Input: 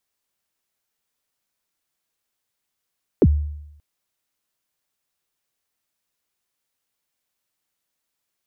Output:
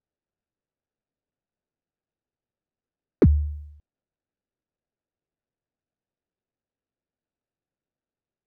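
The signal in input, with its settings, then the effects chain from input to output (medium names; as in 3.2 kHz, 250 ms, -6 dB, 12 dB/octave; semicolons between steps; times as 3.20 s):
kick drum length 0.58 s, from 500 Hz, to 74 Hz, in 48 ms, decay 0.85 s, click off, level -8 dB
median filter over 41 samples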